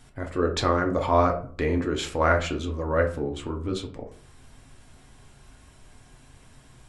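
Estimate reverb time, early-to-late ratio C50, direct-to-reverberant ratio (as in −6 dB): 0.45 s, 11.0 dB, 2.0 dB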